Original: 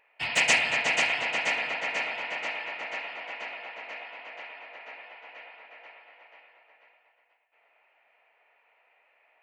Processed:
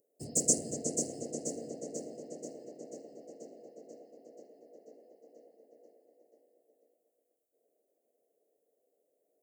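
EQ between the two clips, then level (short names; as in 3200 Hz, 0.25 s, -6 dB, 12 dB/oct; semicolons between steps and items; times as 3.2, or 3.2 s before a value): HPF 210 Hz 6 dB/oct; inverse Chebyshev band-stop 920–3600 Hz, stop band 50 dB; +8.5 dB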